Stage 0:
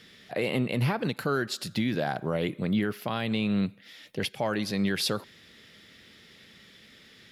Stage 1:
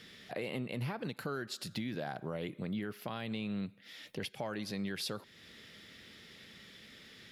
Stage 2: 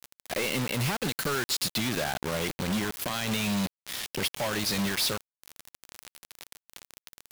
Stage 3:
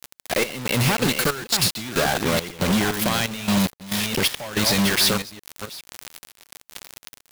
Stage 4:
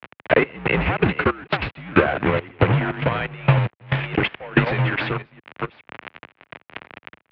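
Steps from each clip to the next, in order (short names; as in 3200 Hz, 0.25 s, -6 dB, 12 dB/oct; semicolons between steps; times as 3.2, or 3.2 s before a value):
compressor 2:1, threshold -42 dBFS, peak gain reduction 11 dB; gain -1 dB
high shelf 2200 Hz +11.5 dB; companded quantiser 2-bit
reverse delay 0.415 s, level -7 dB; step gate "xx.xxx.x." 69 bpm -12 dB; gain +8.5 dB
transient shaper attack +11 dB, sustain -5 dB; mistuned SSB -71 Hz 160–2700 Hz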